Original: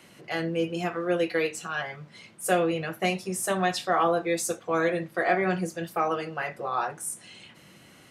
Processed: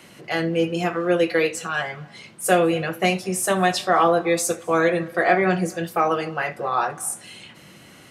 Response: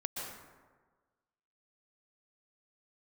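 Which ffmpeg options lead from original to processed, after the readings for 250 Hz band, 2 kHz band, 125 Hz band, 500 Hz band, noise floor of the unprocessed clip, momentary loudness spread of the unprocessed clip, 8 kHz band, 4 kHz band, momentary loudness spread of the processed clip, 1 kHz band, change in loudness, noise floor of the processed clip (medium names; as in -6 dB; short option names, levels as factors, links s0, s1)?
+6.0 dB, +6.0 dB, +6.0 dB, +6.0 dB, -54 dBFS, 10 LU, +6.0 dB, +6.0 dB, 10 LU, +6.0 dB, +6.0 dB, -48 dBFS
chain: -filter_complex "[0:a]asplit=2[s0][s1];[1:a]atrim=start_sample=2205,afade=t=out:st=0.3:d=0.01,atrim=end_sample=13671,adelay=76[s2];[s1][s2]afir=irnorm=-1:irlink=0,volume=0.0794[s3];[s0][s3]amix=inputs=2:normalize=0,volume=2"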